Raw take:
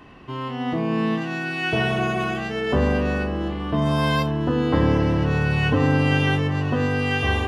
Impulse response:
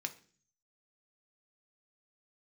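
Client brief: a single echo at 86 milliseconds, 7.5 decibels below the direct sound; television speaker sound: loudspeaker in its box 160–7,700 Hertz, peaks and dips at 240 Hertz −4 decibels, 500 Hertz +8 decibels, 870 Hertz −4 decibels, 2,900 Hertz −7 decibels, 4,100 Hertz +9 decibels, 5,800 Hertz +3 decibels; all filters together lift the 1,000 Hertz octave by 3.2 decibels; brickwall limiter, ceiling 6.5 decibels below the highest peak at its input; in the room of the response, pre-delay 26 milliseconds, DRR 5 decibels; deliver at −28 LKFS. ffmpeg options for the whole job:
-filter_complex "[0:a]equalizer=frequency=1000:width_type=o:gain=5.5,alimiter=limit=-13dB:level=0:latency=1,aecho=1:1:86:0.422,asplit=2[link_01][link_02];[1:a]atrim=start_sample=2205,adelay=26[link_03];[link_02][link_03]afir=irnorm=-1:irlink=0,volume=-5dB[link_04];[link_01][link_04]amix=inputs=2:normalize=0,highpass=frequency=160:width=0.5412,highpass=frequency=160:width=1.3066,equalizer=frequency=240:width_type=q:width=4:gain=-4,equalizer=frequency=500:width_type=q:width=4:gain=8,equalizer=frequency=870:width_type=q:width=4:gain=-4,equalizer=frequency=2900:width_type=q:width=4:gain=-7,equalizer=frequency=4100:width_type=q:width=4:gain=9,equalizer=frequency=5800:width_type=q:width=4:gain=3,lowpass=frequency=7700:width=0.5412,lowpass=frequency=7700:width=1.3066,volume=-5.5dB"

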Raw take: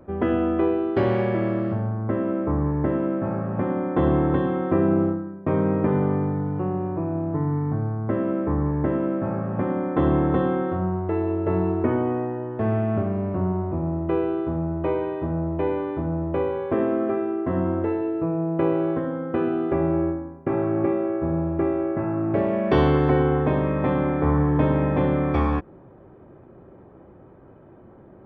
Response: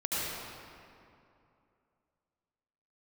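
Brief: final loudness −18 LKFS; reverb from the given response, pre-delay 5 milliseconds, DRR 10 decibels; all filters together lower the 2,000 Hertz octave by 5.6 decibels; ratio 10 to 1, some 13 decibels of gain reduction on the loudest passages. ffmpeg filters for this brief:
-filter_complex "[0:a]equalizer=frequency=2000:width_type=o:gain=-7.5,acompressor=threshold=-29dB:ratio=10,asplit=2[link_01][link_02];[1:a]atrim=start_sample=2205,adelay=5[link_03];[link_02][link_03]afir=irnorm=-1:irlink=0,volume=-18dB[link_04];[link_01][link_04]amix=inputs=2:normalize=0,volume=15.5dB"

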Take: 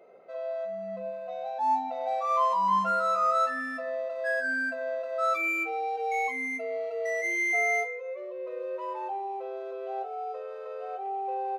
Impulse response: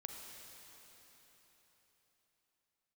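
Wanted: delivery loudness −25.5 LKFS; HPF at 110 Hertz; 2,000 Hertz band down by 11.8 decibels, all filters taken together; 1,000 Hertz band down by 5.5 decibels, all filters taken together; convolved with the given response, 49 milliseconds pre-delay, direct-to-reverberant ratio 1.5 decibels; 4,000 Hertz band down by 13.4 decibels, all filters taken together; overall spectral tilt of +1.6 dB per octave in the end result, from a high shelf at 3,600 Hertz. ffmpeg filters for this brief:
-filter_complex "[0:a]highpass=110,equalizer=frequency=1000:width_type=o:gain=-3.5,equalizer=frequency=2000:width_type=o:gain=-9,highshelf=frequency=3600:gain=-8.5,equalizer=frequency=4000:width_type=o:gain=-8,asplit=2[link_01][link_02];[1:a]atrim=start_sample=2205,adelay=49[link_03];[link_02][link_03]afir=irnorm=-1:irlink=0,volume=1.5dB[link_04];[link_01][link_04]amix=inputs=2:normalize=0,volume=7.5dB"

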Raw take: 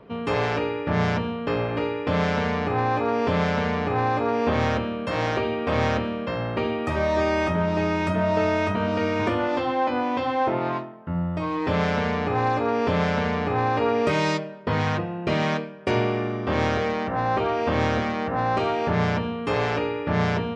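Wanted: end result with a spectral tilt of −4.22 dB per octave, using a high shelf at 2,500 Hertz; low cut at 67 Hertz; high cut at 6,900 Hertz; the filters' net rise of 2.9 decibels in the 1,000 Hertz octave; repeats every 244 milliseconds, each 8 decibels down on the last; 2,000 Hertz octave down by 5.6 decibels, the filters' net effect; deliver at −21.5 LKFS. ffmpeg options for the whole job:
ffmpeg -i in.wav -af "highpass=67,lowpass=6900,equalizer=frequency=1000:width_type=o:gain=6,equalizer=frequency=2000:width_type=o:gain=-7.5,highshelf=frequency=2500:gain=-5,aecho=1:1:244|488|732|976|1220:0.398|0.159|0.0637|0.0255|0.0102,volume=1.5dB" out.wav

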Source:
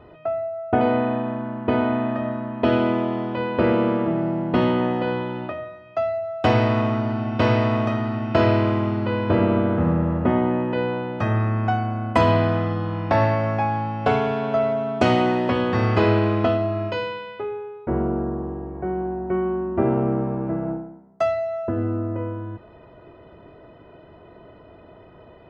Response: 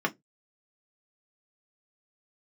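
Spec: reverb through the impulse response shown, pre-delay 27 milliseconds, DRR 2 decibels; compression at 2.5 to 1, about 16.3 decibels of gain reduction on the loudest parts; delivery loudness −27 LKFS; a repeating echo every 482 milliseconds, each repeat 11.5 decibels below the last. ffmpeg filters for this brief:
-filter_complex "[0:a]acompressor=threshold=-40dB:ratio=2.5,aecho=1:1:482|964|1446:0.266|0.0718|0.0194,asplit=2[link_01][link_02];[1:a]atrim=start_sample=2205,adelay=27[link_03];[link_02][link_03]afir=irnorm=-1:irlink=0,volume=-12dB[link_04];[link_01][link_04]amix=inputs=2:normalize=0,volume=6dB"

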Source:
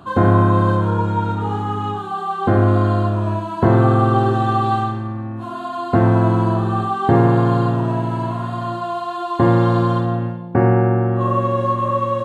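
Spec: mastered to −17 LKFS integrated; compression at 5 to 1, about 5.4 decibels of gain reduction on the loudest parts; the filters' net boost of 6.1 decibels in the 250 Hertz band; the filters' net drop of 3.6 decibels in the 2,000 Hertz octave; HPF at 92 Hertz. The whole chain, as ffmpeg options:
ffmpeg -i in.wav -af "highpass=92,equalizer=frequency=250:width_type=o:gain=8.5,equalizer=frequency=2000:width_type=o:gain=-5.5,acompressor=threshold=-12dB:ratio=5,volume=1.5dB" out.wav

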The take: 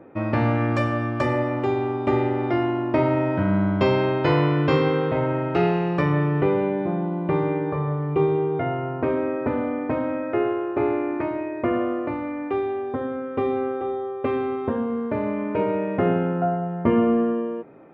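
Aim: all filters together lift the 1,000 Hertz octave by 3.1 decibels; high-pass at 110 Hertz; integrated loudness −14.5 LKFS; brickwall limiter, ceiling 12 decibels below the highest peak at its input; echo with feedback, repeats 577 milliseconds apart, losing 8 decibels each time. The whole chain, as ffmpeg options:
ffmpeg -i in.wav -af "highpass=110,equalizer=frequency=1000:width_type=o:gain=4,alimiter=limit=-17dB:level=0:latency=1,aecho=1:1:577|1154|1731|2308|2885:0.398|0.159|0.0637|0.0255|0.0102,volume=11dB" out.wav

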